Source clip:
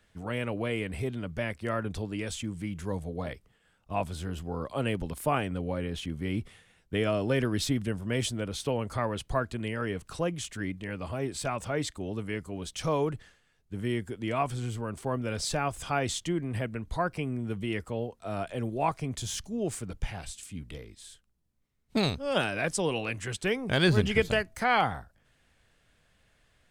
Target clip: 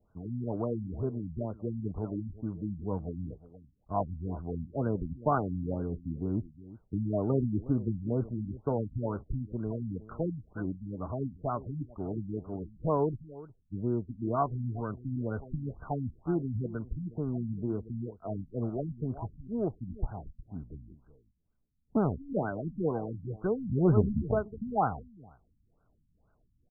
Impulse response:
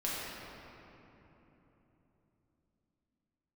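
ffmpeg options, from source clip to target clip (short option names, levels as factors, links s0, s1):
-filter_complex "[0:a]asplit=2[s0][s1];[s1]aeval=exprs='sgn(val(0))*max(abs(val(0))-0.0158,0)':c=same,volume=0.335[s2];[s0][s2]amix=inputs=2:normalize=0,bandreject=f=530:w=12,aecho=1:1:362:0.141,afftfilt=real='re*lt(b*sr/1024,270*pow(1600/270,0.5+0.5*sin(2*PI*2.1*pts/sr)))':imag='im*lt(b*sr/1024,270*pow(1600/270,0.5+0.5*sin(2*PI*2.1*pts/sr)))':win_size=1024:overlap=0.75,volume=0.841"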